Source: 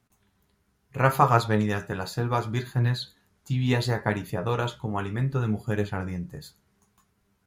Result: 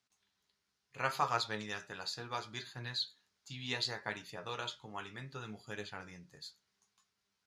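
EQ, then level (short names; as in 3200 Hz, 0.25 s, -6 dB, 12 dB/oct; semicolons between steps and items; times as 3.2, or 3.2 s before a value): band-pass 4900 Hz, Q 1.6; tilt -2.5 dB/oct; +5.5 dB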